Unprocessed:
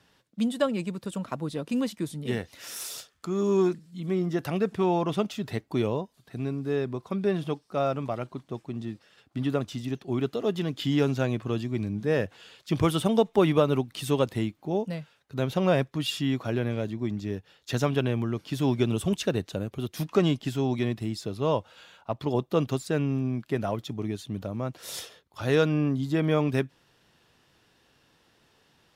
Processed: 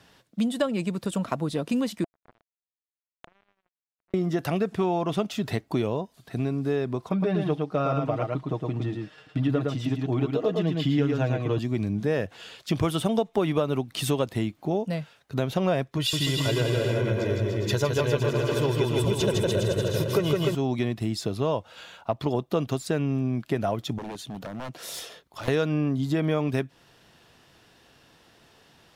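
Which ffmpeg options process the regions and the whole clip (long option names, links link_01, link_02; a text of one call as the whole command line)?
ffmpeg -i in.wav -filter_complex "[0:a]asettb=1/sr,asplit=3[link_01][link_02][link_03];[link_01]atrim=end=2.044[link_04];[link_02]atrim=start=2.04:end=4.14,asetpts=PTS-STARTPTS,afade=type=in:duration=0.004:curve=qsin,afade=type=out:start_time=2.096:duration=0.004:curve=qsin,acompressor=threshold=-38dB:ratio=12:attack=3.2:release=140:knee=1:detection=peak,lowpass=frequency=990:width_type=q:width=1.5,acrusher=bits=4:mix=0:aa=0.5[link_05];[link_03]atrim=start=4.136[link_06];[link_04][link_05]acrossfade=duration=0.004:curve1=hsin:curve2=qsin[link_07];[link_07][link_06]acrossfade=duration=0.004:curve1=qsin:curve2=hsin,asettb=1/sr,asplit=3[link_08][link_09][link_10];[link_08]atrim=end=7.094[link_11];[link_09]atrim=start=7.09:end=11.59,asetpts=PTS-STARTPTS,afade=type=in:duration=0.004:curve=qsin,afade=type=out:start_time=4.496:duration=0.004:curve=qsin,lowpass=frequency=3000:poles=1,aecho=1:1:6.5:0.64,atrim=end_sample=198450,aecho=1:1:111:0.631,atrim=end_sample=198450[link_12];[link_10]atrim=start=11.586[link_13];[link_11][link_12]acrossfade=duration=0.004:curve1=hsin:curve2=qsin[link_14];[link_14][link_13]acrossfade=duration=0.004:curve1=qsin:curve2=hsin,asettb=1/sr,asplit=3[link_15][link_16][link_17];[link_15]atrim=end=15.974[link_18];[link_16]atrim=start=15.97:end=20.55,asetpts=PTS-STARTPTS,afade=type=in:duration=0.004:curve=qsin,afade=type=out:start_time=4.576:duration=0.004:curve=qsin,aecho=1:1:2:0.7,atrim=end_sample=201978,aecho=1:1:160|296|411.6|509.9|593.4|664.4|724.7|776|819.6:0.794|0.631|0.501|0.398|0.316|0.251|0.2|0.158|0.126,atrim=end_sample=201978[link_19];[link_17]atrim=start=20.546[link_20];[link_18][link_19]acrossfade=duration=0.004:curve1=hsin:curve2=qsin[link_21];[link_21][link_20]acrossfade=duration=0.004:curve1=qsin:curve2=hsin,asettb=1/sr,asplit=3[link_22][link_23][link_24];[link_22]atrim=end=23.984[link_25];[link_23]atrim=start=23.98:end=25.48,asetpts=PTS-STARTPTS,afade=type=in:duration=0.004:curve=qsin,afade=type=out:start_time=1.496:duration=0.004:curve=qsin,equalizer=frequency=92:width_type=o:width=0.36:gain=-12.5,aeval=exprs='0.0335*(abs(mod(val(0)/0.0335+3,4)-2)-1)':channel_layout=same,acompressor=threshold=-44dB:ratio=2:attack=3.2:release=140:knee=1:detection=peak[link_26];[link_24]atrim=start=25.476[link_27];[link_25][link_26]acrossfade=duration=0.004:curve1=hsin:curve2=qsin[link_28];[link_28][link_27]acrossfade=duration=0.004:curve1=qsin:curve2=hsin,equalizer=frequency=680:width=7.9:gain=4.5,acompressor=threshold=-30dB:ratio=3,volume=6.5dB" out.wav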